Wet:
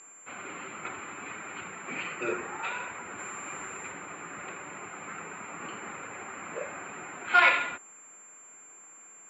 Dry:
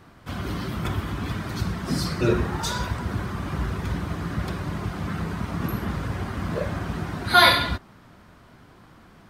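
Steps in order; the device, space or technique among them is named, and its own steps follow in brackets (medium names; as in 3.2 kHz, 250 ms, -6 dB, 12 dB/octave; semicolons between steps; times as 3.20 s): toy sound module (decimation joined by straight lines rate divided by 6×; class-D stage that switches slowly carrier 7.3 kHz; cabinet simulation 660–3900 Hz, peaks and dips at 660 Hz -7 dB, 1 kHz -6 dB, 1.7 kHz -4 dB, 2.4 kHz +8 dB, 3.4 kHz -8 dB); 3.18–3.90 s: treble shelf 3.6 kHz -> 6.1 kHz +9 dB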